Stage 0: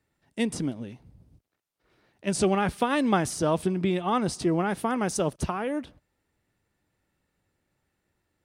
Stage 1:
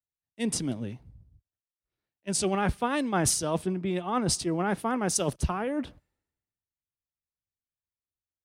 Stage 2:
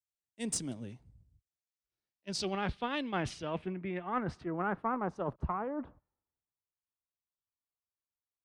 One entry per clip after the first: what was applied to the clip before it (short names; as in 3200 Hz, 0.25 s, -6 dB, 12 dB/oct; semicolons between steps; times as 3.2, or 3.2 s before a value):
reverse; compressor 4:1, threshold -34 dBFS, peak gain reduction 13.5 dB; reverse; three-band expander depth 100%; gain +6.5 dB
low-pass sweep 8100 Hz -> 1100 Hz, 1.36–5.05; added harmonics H 2 -19 dB, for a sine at -11 dBFS; gain -8.5 dB